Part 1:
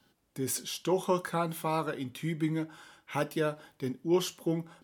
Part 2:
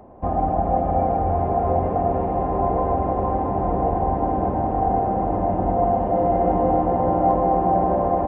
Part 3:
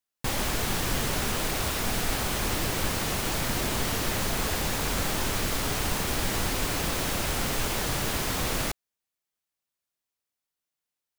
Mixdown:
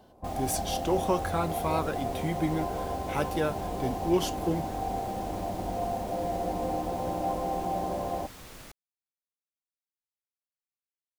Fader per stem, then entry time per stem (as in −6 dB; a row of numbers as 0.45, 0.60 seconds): +1.0, −12.0, −18.5 decibels; 0.00, 0.00, 0.00 seconds